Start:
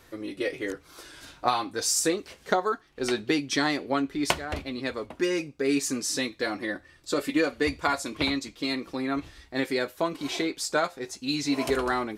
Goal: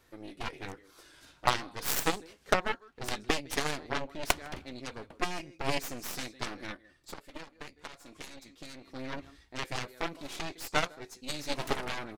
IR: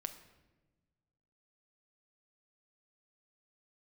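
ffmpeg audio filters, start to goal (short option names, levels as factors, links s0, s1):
-filter_complex "[0:a]aecho=1:1:157:0.112,aeval=exprs='0.422*(cos(1*acos(clip(val(0)/0.422,-1,1)))-cos(1*PI/2))+0.0422*(cos(3*acos(clip(val(0)/0.422,-1,1)))-cos(3*PI/2))+0.075*(cos(5*acos(clip(val(0)/0.422,-1,1)))-cos(5*PI/2))+0.0668*(cos(6*acos(clip(val(0)/0.422,-1,1)))-cos(6*PI/2))+0.119*(cos(7*acos(clip(val(0)/0.422,-1,1)))-cos(7*PI/2))':c=same,asplit=3[s0][s1][s2];[s0]afade=t=out:st=6.74:d=0.02[s3];[s1]acompressor=threshold=0.00794:ratio=4,afade=t=in:st=6.74:d=0.02,afade=t=out:st=8.94:d=0.02[s4];[s2]afade=t=in:st=8.94:d=0.02[s5];[s3][s4][s5]amix=inputs=3:normalize=0,volume=0.841"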